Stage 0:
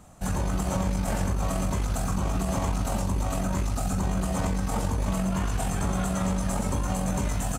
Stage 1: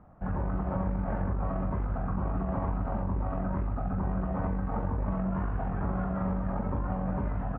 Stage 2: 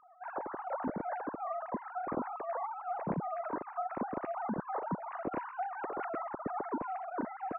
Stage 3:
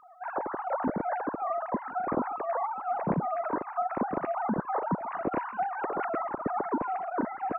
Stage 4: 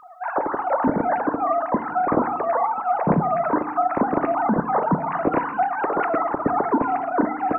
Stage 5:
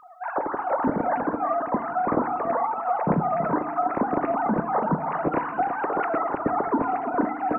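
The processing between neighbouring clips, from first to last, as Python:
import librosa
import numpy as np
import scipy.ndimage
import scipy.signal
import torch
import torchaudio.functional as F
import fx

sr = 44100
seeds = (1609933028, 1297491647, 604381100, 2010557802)

y1 = scipy.signal.sosfilt(scipy.signal.butter(4, 1600.0, 'lowpass', fs=sr, output='sos'), x)
y1 = F.gain(torch.from_numpy(y1), -3.5).numpy()
y2 = fx.sine_speech(y1, sr)
y2 = F.gain(torch.from_numpy(y2), -8.0).numpy()
y3 = fx.echo_feedback(y2, sr, ms=1036, feedback_pct=28, wet_db=-22)
y3 = F.gain(torch.from_numpy(y3), 6.5).numpy()
y4 = fx.rev_fdn(y3, sr, rt60_s=0.91, lf_ratio=1.55, hf_ratio=0.3, size_ms=20.0, drr_db=12.5)
y4 = F.gain(torch.from_numpy(y4), 9.0).numpy()
y5 = y4 + 10.0 ** (-10.0 / 20.0) * np.pad(y4, (int(330 * sr / 1000.0), 0))[:len(y4)]
y5 = F.gain(torch.from_numpy(y5), -3.5).numpy()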